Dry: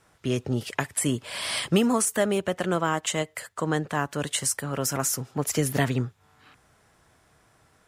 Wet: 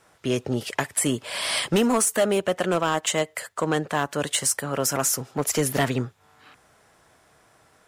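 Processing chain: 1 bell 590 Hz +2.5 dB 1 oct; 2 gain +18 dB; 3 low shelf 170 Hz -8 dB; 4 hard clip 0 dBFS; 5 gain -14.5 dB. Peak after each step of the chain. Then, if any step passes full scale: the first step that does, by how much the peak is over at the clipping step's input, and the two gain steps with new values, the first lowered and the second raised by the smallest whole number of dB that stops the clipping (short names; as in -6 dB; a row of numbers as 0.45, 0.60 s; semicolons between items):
-8.0, +10.0, +8.5, 0.0, -14.5 dBFS; step 2, 8.5 dB; step 2 +9 dB, step 5 -5.5 dB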